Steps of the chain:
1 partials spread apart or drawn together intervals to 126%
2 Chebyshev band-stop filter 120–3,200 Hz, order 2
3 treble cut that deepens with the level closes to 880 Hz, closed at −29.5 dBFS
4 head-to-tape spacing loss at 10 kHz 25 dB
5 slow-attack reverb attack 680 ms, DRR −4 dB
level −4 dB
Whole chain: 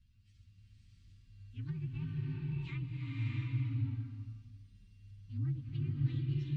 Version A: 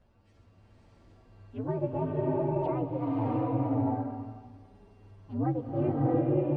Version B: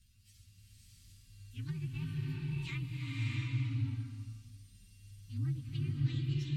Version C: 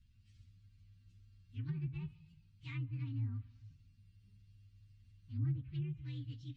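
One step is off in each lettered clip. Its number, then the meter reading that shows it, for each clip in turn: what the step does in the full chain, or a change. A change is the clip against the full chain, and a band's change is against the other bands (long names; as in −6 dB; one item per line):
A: 2, change in momentary loudness spread −6 LU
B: 4, 4 kHz band +8.0 dB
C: 5, change in momentary loudness spread −3 LU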